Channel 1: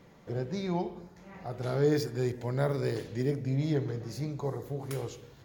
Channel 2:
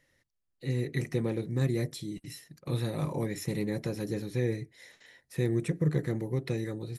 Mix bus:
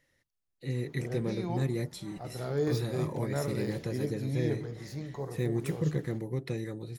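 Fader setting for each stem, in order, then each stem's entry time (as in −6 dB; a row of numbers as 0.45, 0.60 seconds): −4.0, −2.5 decibels; 0.75, 0.00 seconds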